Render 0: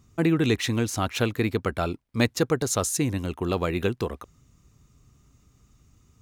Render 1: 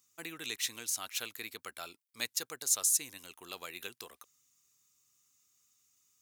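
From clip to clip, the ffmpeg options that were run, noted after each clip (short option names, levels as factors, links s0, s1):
-af "aderivative"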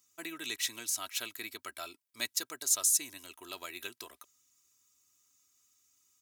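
-af "aecho=1:1:3.1:0.55"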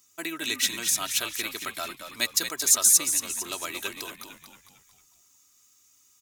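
-filter_complex "[0:a]asplit=6[s0][s1][s2][s3][s4][s5];[s1]adelay=226,afreqshift=-64,volume=0.398[s6];[s2]adelay=452,afreqshift=-128,volume=0.184[s7];[s3]adelay=678,afreqshift=-192,volume=0.0841[s8];[s4]adelay=904,afreqshift=-256,volume=0.0389[s9];[s5]adelay=1130,afreqshift=-320,volume=0.0178[s10];[s0][s6][s7][s8][s9][s10]amix=inputs=6:normalize=0,volume=2.66"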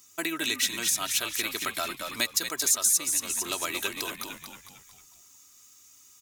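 -af "acompressor=threshold=0.0178:ratio=2,volume=2"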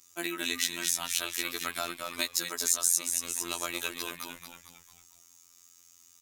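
-af "afftfilt=real='hypot(re,im)*cos(PI*b)':imag='0':win_size=2048:overlap=0.75"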